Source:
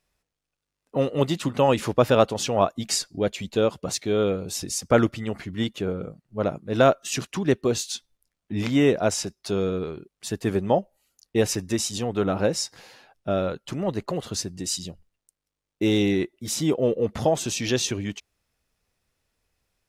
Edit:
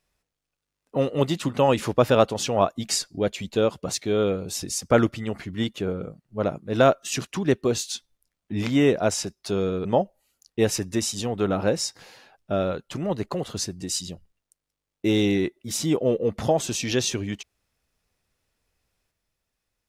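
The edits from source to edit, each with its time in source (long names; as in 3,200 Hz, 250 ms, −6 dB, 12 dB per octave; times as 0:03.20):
0:09.85–0:10.62: remove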